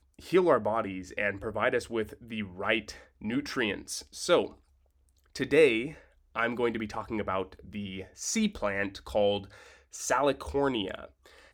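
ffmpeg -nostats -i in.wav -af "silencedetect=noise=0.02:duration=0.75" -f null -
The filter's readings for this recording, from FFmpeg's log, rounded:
silence_start: 4.46
silence_end: 5.36 | silence_duration: 0.89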